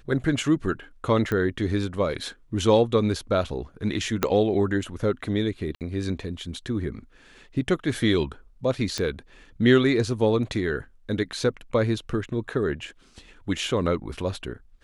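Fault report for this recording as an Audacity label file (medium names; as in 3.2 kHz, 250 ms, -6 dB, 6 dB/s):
1.320000	1.320000	pop -15 dBFS
4.230000	4.230000	pop -6 dBFS
5.750000	5.810000	dropout 58 ms
8.980000	8.980000	pop -14 dBFS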